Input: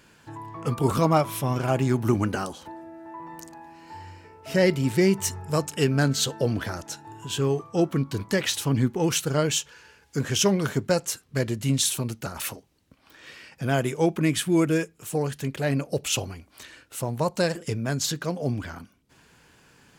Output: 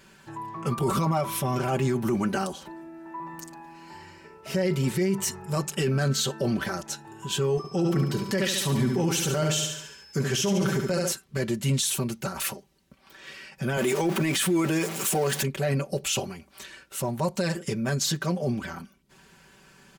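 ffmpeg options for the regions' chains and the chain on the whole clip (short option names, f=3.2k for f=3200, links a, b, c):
-filter_complex "[0:a]asettb=1/sr,asplit=3[a][b][c];[a]atrim=end=7.574[d];[b]atrim=start=7.57:end=11.12,asetpts=PTS-STARTPTS,afade=t=in:d=0.004:c=qsin,afade=t=out:st=3.546:d=0.004:c=qsin,highpass=40,aecho=1:1:71|142|213|284|355|426:0.447|0.232|0.121|0.0628|0.0327|0.017,atrim=end_sample=156555,aeval=exprs='val(0)+0.002*sin(2*PI*5200*n/s)':c=same[e];[c]atrim=start=11.116[f];[d][e]acrossfade=d=0.004:c1=hsin:c2=qsin[g];[g][f]acrossfade=d=0.004:c1=qsin:c2=hsin,asettb=1/sr,asplit=3[h][i][j];[h]atrim=end=13.774[k];[i]atrim=start=13.77:end=15.43,asetpts=PTS-STARTPTS,afade=t=in:d=0.004:c=qsin,afade=t=out:st=1.656:d=0.004:c=qsin,aeval=exprs='val(0)+0.5*0.02*sgn(val(0))':c=same,highpass=230,acontrast=73[l];[j]atrim=start=15.426[m];[k][l]acrossfade=d=0.004:c1=hsin:c2=qsin[n];[n][m]acrossfade=d=0.004:c1=qsin:c2=hsin,aecho=1:1:5.2:0.76,alimiter=limit=-17dB:level=0:latency=1:release=17"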